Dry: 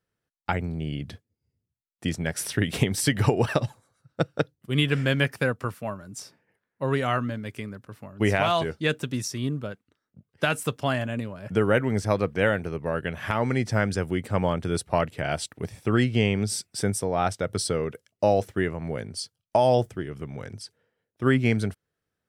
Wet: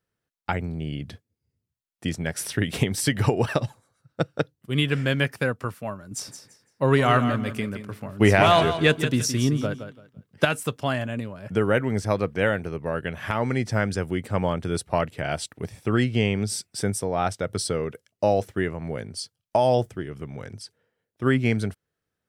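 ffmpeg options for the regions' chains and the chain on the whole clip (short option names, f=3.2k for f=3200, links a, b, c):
-filter_complex "[0:a]asettb=1/sr,asplit=3[a][b][c];[a]atrim=end=6.114[d];[b]atrim=start=6.11:end=10.45,asetpts=PTS-STARTPTS,afade=t=in:d=0.004:c=qsin,afade=t=out:st=4.336:d=0.004:c=qsin,acontrast=53,aecho=1:1:169|338|507:0.316|0.0727|0.0167,atrim=end_sample=191394[e];[c]atrim=start=10.446[f];[d][e]acrossfade=d=0.004:c1=hsin:c2=qsin[g];[g][f]acrossfade=d=0.004:c1=qsin:c2=hsin"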